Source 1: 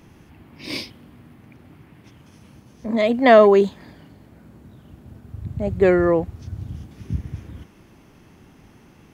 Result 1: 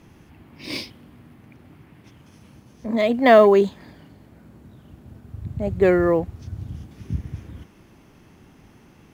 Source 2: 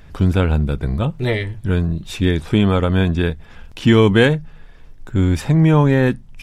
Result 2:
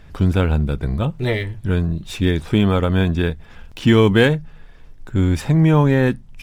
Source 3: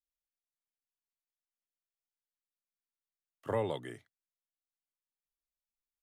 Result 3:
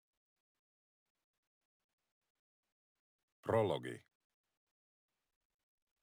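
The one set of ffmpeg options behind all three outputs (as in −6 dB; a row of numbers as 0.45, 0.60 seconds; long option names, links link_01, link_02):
-af "volume=-1dB" -ar 44100 -c:a adpcm_ima_wav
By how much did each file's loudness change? −1.0, −1.0, −1.0 LU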